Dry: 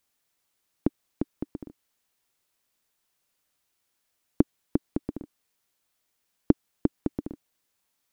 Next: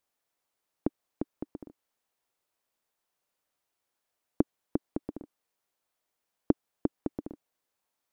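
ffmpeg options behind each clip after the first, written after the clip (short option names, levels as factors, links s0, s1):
-af "equalizer=f=680:t=o:w=2.3:g=8,volume=0.376"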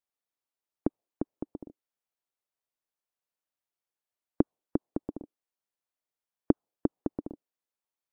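-af "afftdn=nr=13:nf=-58,volume=1.19"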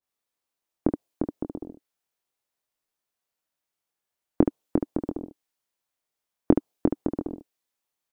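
-af "aecho=1:1:23|73:0.531|0.447,adynamicequalizer=threshold=0.00355:dfrequency=1900:dqfactor=0.7:tfrequency=1900:tqfactor=0.7:attack=5:release=100:ratio=0.375:range=3:mode=boostabove:tftype=highshelf,volume=1.68"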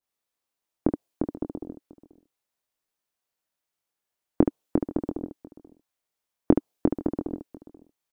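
-filter_complex "[0:a]asplit=2[s0][s1];[s1]adelay=484,volume=0.126,highshelf=f=4000:g=-10.9[s2];[s0][s2]amix=inputs=2:normalize=0"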